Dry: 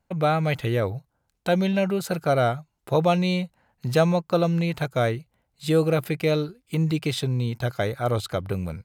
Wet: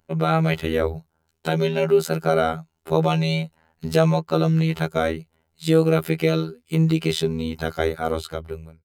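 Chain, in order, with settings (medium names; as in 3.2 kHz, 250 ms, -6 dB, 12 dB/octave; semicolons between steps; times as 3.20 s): fade out at the end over 0.96 s; in parallel at +3 dB: peak limiter -15 dBFS, peak gain reduction 7 dB; on the sum: robot voice 80.5 Hz; small resonant body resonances 390/1400/3000 Hz, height 9 dB, ringing for 85 ms; trim -3 dB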